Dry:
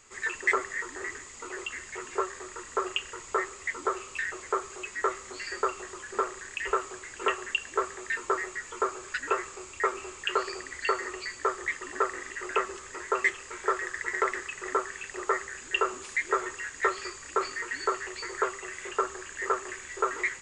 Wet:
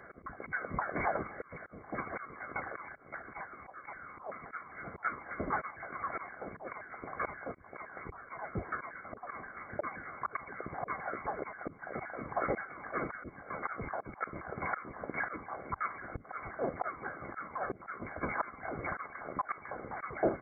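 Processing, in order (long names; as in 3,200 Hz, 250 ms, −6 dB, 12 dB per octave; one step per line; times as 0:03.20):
pitch shifter swept by a sawtooth +9 semitones, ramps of 262 ms
volume swells 653 ms
linear-phase brick-wall high-pass 650 Hz
voice inversion scrambler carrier 2,900 Hz
notch comb filter 910 Hz
level +12 dB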